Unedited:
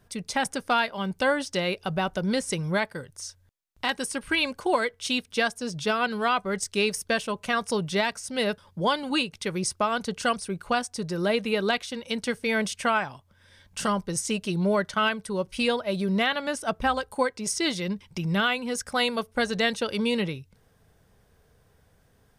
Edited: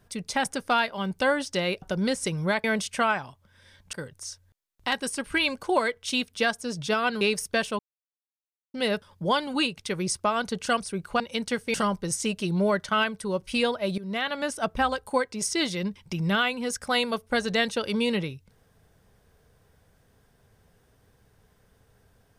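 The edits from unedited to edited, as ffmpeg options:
-filter_complex "[0:a]asplit=10[a][b][c][d][e][f][g][h][i][j];[a]atrim=end=1.822[k];[b]atrim=start=2.078:end=2.902[l];[c]atrim=start=12.498:end=13.792[m];[d]atrim=start=2.898:end=6.182[n];[e]atrim=start=6.768:end=7.35,asetpts=PTS-STARTPTS,afade=t=out:st=0.578:d=0.004:c=hsin[o];[f]atrim=start=7.35:end=8.3,asetpts=PTS-STARTPTS,volume=0[p];[g]atrim=start=8.3:end=10.762,asetpts=PTS-STARTPTS,afade=t=in:d=0.004:c=hsin[q];[h]atrim=start=11.958:end=12.502[r];[i]atrim=start=13.788:end=16.03,asetpts=PTS-STARTPTS,afade=t=out:st=2.238:d=0.004:c=hsin:silence=0.141254[s];[j]atrim=start=16.03,asetpts=PTS-STARTPTS,afade=t=in:d=0.41:silence=0.141254[t];[k][l]acrossfade=d=0.004:c1=hsin:c2=hsin[u];[u][m]acrossfade=d=0.004:c1=hsin:c2=hsin[v];[v][n]acrossfade=d=0.004:c1=hsin:c2=hsin[w];[o][p][q]concat=n=3:v=0:a=1[x];[w][x]acrossfade=d=0.004:c1=hsin:c2=hsin[y];[y][r]acrossfade=d=0.004:c1=hsin:c2=hsin[z];[s][t]concat=n=2:v=0:a=1[aa];[z][aa]acrossfade=d=0.004:c1=hsin:c2=hsin"

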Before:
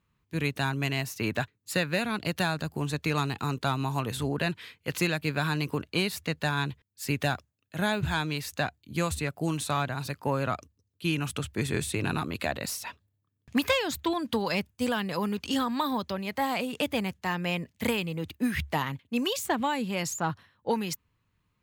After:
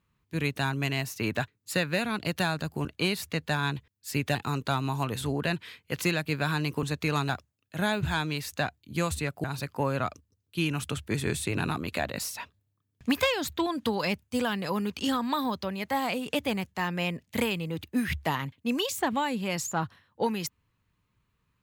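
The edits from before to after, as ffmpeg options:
-filter_complex "[0:a]asplit=6[a][b][c][d][e][f];[a]atrim=end=2.852[g];[b]atrim=start=5.788:end=7.292[h];[c]atrim=start=3.308:end=5.792[i];[d]atrim=start=2.848:end=3.312[j];[e]atrim=start=7.288:end=9.442[k];[f]atrim=start=9.908[l];[g][h]acrossfade=d=0.004:c1=hsin:c2=hsin[m];[m][i]acrossfade=d=0.004:c1=hsin:c2=hsin[n];[n][j]acrossfade=d=0.004:c1=hsin:c2=hsin[o];[o][k]acrossfade=d=0.004:c1=hsin:c2=hsin[p];[p][l]acrossfade=d=0.004:c1=hsin:c2=hsin"

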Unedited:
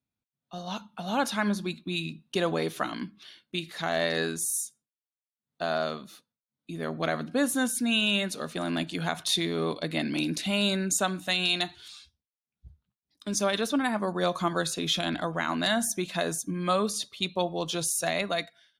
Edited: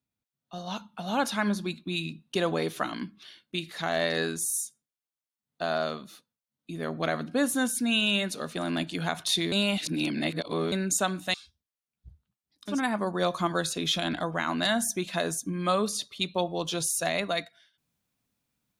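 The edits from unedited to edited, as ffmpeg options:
-filter_complex "[0:a]asplit=5[a][b][c][d][e];[a]atrim=end=9.522[f];[b]atrim=start=9.518:end=10.722,asetpts=PTS-STARTPTS,areverse[g];[c]atrim=start=10.718:end=11.342[h];[d]atrim=start=11.928:end=13.4[i];[e]atrim=start=13.66[j];[f][g]acrossfade=d=0.004:c1=hsin:c2=hsin[k];[k][h]acrossfade=d=0.004:c1=hsin:c2=hsin[l];[l][i]acrossfade=d=0.004:c1=hsin:c2=hsin[m];[m][j]acrossfade=d=0.16:c1=tri:c2=tri"

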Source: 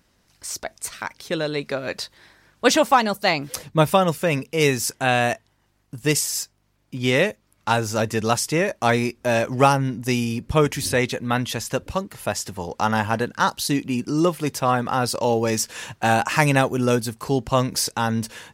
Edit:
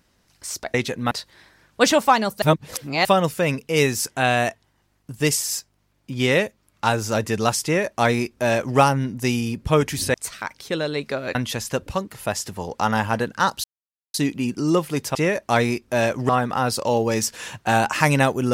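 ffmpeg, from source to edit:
-filter_complex "[0:a]asplit=10[a][b][c][d][e][f][g][h][i][j];[a]atrim=end=0.742[k];[b]atrim=start=10.978:end=11.352[l];[c]atrim=start=1.948:end=3.262[m];[d]atrim=start=3.258:end=3.892,asetpts=PTS-STARTPTS,areverse[n];[e]atrim=start=3.888:end=10.982[o];[f]atrim=start=0.738:end=1.952[p];[g]atrim=start=11.348:end=13.64,asetpts=PTS-STARTPTS,afade=t=out:st=2.288:d=0.004:c=hsin,apad=pad_dur=0.5[q];[h]atrim=start=13.64:end=14.652,asetpts=PTS-STARTPTS,afade=t=in:d=0.004:c=hsin[r];[i]atrim=start=8.478:end=9.622[s];[j]atrim=start=14.648[t];[k][l]acrossfade=d=0.004:c1=hsin:c2=hsin[u];[u][m]acrossfade=d=0.004:c1=hsin:c2=hsin[v];[v][n]acrossfade=d=0.004:c1=hsin:c2=hsin[w];[w][o]acrossfade=d=0.004:c1=hsin:c2=hsin[x];[x][p]acrossfade=d=0.004:c1=hsin:c2=hsin[y];[q][r]concat=n=2:v=0:a=1[z];[y][z]acrossfade=d=0.004:c1=hsin:c2=hsin[aa];[aa][s]acrossfade=d=0.004:c1=hsin:c2=hsin[ab];[ab][t]acrossfade=d=0.004:c1=hsin:c2=hsin"

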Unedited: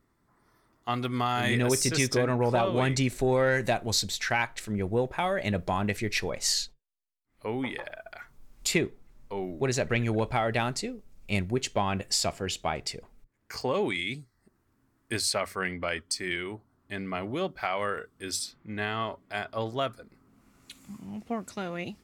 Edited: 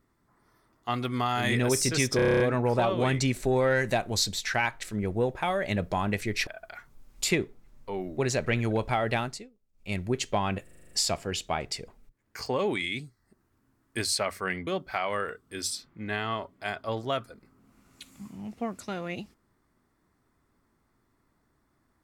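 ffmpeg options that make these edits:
-filter_complex "[0:a]asplit=20[a][b][c][d][e][f][g][h][i][j][k][l][m][n][o][p][q][r][s][t];[a]atrim=end=2.192[u];[b]atrim=start=2.158:end=2.192[v];[c]atrim=start=2.158:end=2.192[w];[d]atrim=start=2.158:end=2.192[x];[e]atrim=start=2.158:end=2.192[y];[f]atrim=start=2.158:end=2.192[z];[g]atrim=start=2.158:end=2.192[aa];[h]atrim=start=2.158:end=2.192[ab];[i]atrim=start=2.158:end=6.232[ac];[j]atrim=start=7.898:end=10.93,asetpts=PTS-STARTPTS,afade=t=out:st=2.682:d=0.35:silence=0.0841395[ad];[k]atrim=start=10.93:end=11.15,asetpts=PTS-STARTPTS,volume=-21.5dB[ae];[l]atrim=start=11.15:end=12.102,asetpts=PTS-STARTPTS,afade=t=in:d=0.35:silence=0.0841395[af];[m]atrim=start=12.058:end=12.102[ag];[n]atrim=start=12.058:end=12.102[ah];[o]atrim=start=12.058:end=12.102[ai];[p]atrim=start=12.058:end=12.102[aj];[q]atrim=start=12.058:end=12.102[ak];[r]atrim=start=12.058:end=12.102[al];[s]atrim=start=12.058:end=15.822[am];[t]atrim=start=17.358[an];[u][v]acrossfade=d=0.004:c1=hsin:c2=hsin[ao];[ao][w]acrossfade=d=0.004:c1=hsin:c2=hsin[ap];[ap][x]acrossfade=d=0.004:c1=hsin:c2=hsin[aq];[aq][y]acrossfade=d=0.004:c1=hsin:c2=hsin[ar];[ar][z]acrossfade=d=0.004:c1=hsin:c2=hsin[as];[as][aa]acrossfade=d=0.004:c1=hsin:c2=hsin[at];[at][ab]acrossfade=d=0.004:c1=hsin:c2=hsin[au];[au][ac]acrossfade=d=0.004:c1=hsin:c2=hsin[av];[ad][ae][af]concat=n=3:v=0:a=1[aw];[av][aw]acrossfade=d=0.004:c1=hsin:c2=hsin[ax];[ax][ag]acrossfade=d=0.004:c1=hsin:c2=hsin[ay];[ay][ah]acrossfade=d=0.004:c1=hsin:c2=hsin[az];[az][ai]acrossfade=d=0.004:c1=hsin:c2=hsin[ba];[ba][aj]acrossfade=d=0.004:c1=hsin:c2=hsin[bb];[bb][ak]acrossfade=d=0.004:c1=hsin:c2=hsin[bc];[bc][al]acrossfade=d=0.004:c1=hsin:c2=hsin[bd];[bd][am]acrossfade=d=0.004:c1=hsin:c2=hsin[be];[be][an]acrossfade=d=0.004:c1=hsin:c2=hsin"

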